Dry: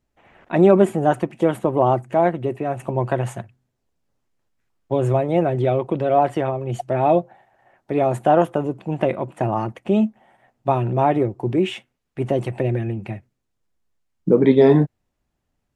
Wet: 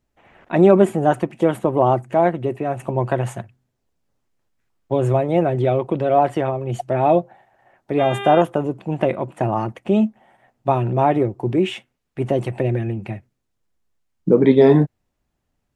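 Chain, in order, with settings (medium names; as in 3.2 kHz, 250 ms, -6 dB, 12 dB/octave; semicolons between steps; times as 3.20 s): 7.98–8.40 s: mains buzz 400 Hz, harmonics 9, -30 dBFS -3 dB/octave; trim +1 dB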